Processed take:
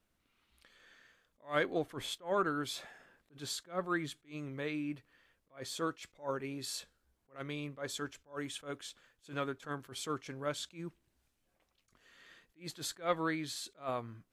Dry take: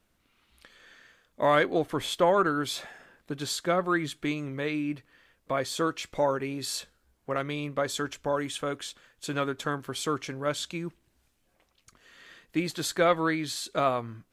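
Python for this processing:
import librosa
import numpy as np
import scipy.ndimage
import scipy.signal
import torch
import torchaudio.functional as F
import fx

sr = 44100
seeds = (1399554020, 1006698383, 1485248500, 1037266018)

y = fx.attack_slew(x, sr, db_per_s=240.0)
y = y * librosa.db_to_amplitude(-7.5)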